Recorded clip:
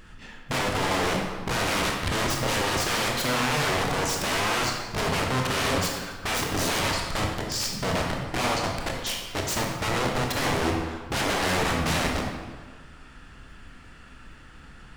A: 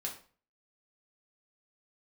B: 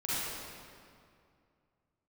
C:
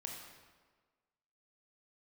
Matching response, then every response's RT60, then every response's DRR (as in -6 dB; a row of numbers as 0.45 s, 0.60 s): C; 0.40 s, 2.4 s, 1.5 s; -2.0 dB, -10.5 dB, 0.0 dB